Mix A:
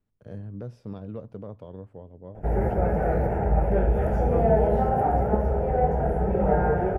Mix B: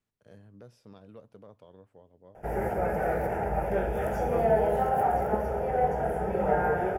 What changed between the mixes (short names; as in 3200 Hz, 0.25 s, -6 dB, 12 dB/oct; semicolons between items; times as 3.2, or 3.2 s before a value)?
first voice -7.5 dB; master: add tilt +3 dB/oct